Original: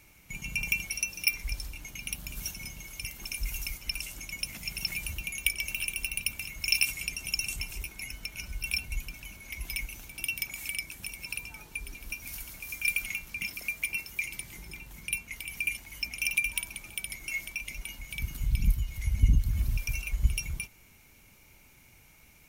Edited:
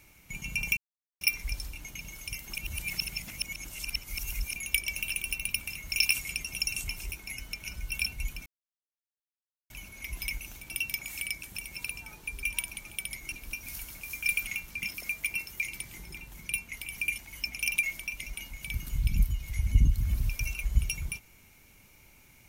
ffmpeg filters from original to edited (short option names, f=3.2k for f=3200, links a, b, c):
-filter_complex "[0:a]asplit=10[a][b][c][d][e][f][g][h][i][j];[a]atrim=end=0.77,asetpts=PTS-STARTPTS,afade=t=out:st=0.766:d=0.004:c=hsin[k];[b]atrim=start=0.77:end=1.21,asetpts=PTS-STARTPTS,volume=0[l];[c]atrim=start=1.21:end=2.012,asetpts=PTS-STARTPTS,afade=t=in:d=0.004:c=hsin[m];[d]atrim=start=2.728:end=3.292[n];[e]atrim=start=3.288:end=5.282,asetpts=PTS-STARTPTS,areverse[o];[f]atrim=start=5.278:end=9.18,asetpts=PTS-STARTPTS,afade=t=out:st=3.898:d=0.004:c=hsin,apad=pad_dur=1.24[p];[g]atrim=start=9.18:end=11.912,asetpts=PTS-STARTPTS,afade=t=in:d=0.004:c=hsin[q];[h]atrim=start=16.418:end=17.312[r];[i]atrim=start=11.908:end=16.422[s];[j]atrim=start=17.308[t];[k][l][m]concat=n=3:v=0:a=1[u];[u][n]acrossfade=d=0.004:c1=hsin:c2=hsin[v];[v][o]acrossfade=d=0.004:c1=hsin:c2=hsin[w];[p][q]concat=n=2:v=0:a=1[x];[w][x]acrossfade=d=0.004:c1=hsin:c2=hsin[y];[y][r]acrossfade=d=0.004:c1=hsin:c2=hsin[z];[z][s]acrossfade=d=0.004:c1=hsin:c2=hsin[aa];[aa][t]acrossfade=d=0.004:c1=hsin:c2=hsin"